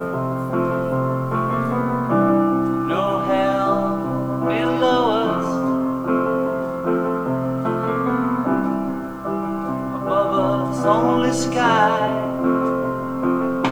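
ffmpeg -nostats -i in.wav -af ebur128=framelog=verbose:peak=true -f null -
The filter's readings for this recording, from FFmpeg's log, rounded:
Integrated loudness:
  I:         -20.2 LUFS
  Threshold: -30.2 LUFS
Loudness range:
  LRA:         3.0 LU
  Threshold: -40.2 LUFS
  LRA low:   -21.9 LUFS
  LRA high:  -18.9 LUFS
True peak:
  Peak:       -4.4 dBFS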